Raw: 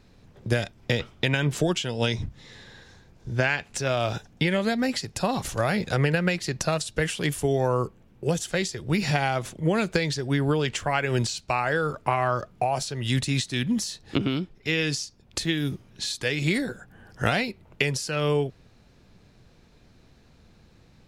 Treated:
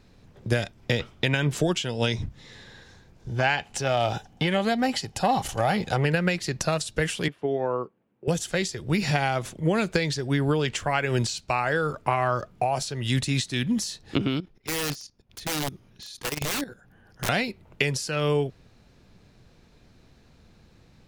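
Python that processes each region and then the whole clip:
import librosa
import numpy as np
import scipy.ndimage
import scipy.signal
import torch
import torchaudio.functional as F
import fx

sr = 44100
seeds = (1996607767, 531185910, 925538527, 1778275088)

y = fx.chain(x, sr, fx.small_body(hz=(790.0, 3000.0), ring_ms=25, db=11),
    fx.transformer_sat(knee_hz=550.0), at=(3.28, 6.05))
y = fx.chain(y, sr, fx.highpass(hz=230.0, slope=12),
    fx.air_absorb(metres=370.0),
    fx.upward_expand(threshold_db=-41.0, expansion=1.5), at=(7.28, 8.28))
y = fx.chain(y, sr, fx.notch(hz=7800.0, q=5.3),
    fx.overflow_wrap(gain_db=20.5),
    fx.level_steps(step_db=14), at=(14.4, 17.29))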